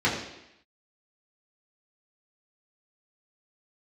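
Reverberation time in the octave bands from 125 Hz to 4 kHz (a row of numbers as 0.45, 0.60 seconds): 0.70, 0.85, 0.80, 0.85, 0.90, 0.90 seconds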